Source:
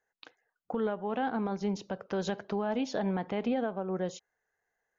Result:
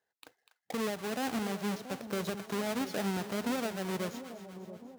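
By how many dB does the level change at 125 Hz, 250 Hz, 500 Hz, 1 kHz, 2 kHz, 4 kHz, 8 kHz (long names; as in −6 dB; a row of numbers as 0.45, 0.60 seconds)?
−1.5 dB, −2.0 dB, −3.5 dB, −3.0 dB, +2.0 dB, +4.5 dB, can't be measured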